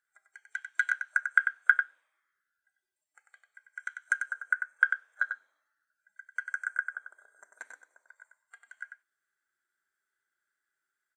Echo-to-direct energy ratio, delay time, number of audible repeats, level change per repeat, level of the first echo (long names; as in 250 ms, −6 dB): −7.0 dB, 95 ms, 1, repeats not evenly spaced, −7.0 dB